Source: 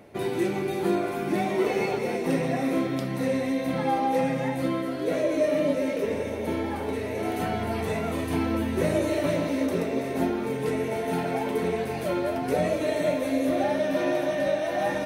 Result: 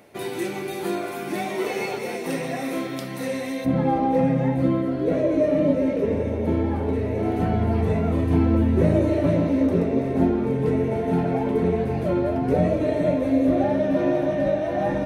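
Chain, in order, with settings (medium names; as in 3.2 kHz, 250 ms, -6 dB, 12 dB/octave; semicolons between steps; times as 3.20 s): tilt EQ +1.5 dB/octave, from 3.64 s -3.5 dB/octave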